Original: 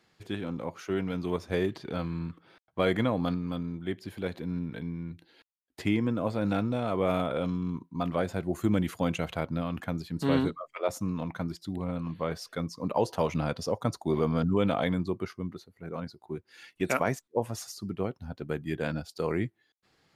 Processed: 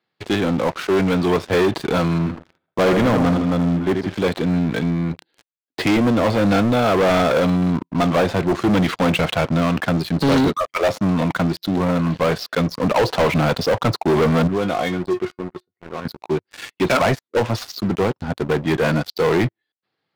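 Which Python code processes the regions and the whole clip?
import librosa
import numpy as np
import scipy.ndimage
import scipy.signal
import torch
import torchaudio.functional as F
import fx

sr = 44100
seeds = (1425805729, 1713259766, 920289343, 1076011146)

y = fx.chain(x, sr, fx.lowpass(hz=1300.0, slope=6),
    fx.echo_feedback(ms=81, feedback_pct=44, wet_db=-8.5), at=(2.18, 4.14))
y = fx.chain(y, sr, fx.air_absorb(metres=120.0),
    fx.comb_fb(f0_hz=360.0, decay_s=0.18, harmonics='all', damping=0.0, mix_pct=80), at=(14.47, 16.05))
y = scipy.signal.sosfilt(scipy.signal.cheby1(3, 1.0, [100.0, 4200.0], 'bandpass', fs=sr, output='sos'), y)
y = fx.low_shelf(y, sr, hz=170.0, db=-6.5)
y = fx.leveller(y, sr, passes=5)
y = y * 10.0 ** (2.0 / 20.0)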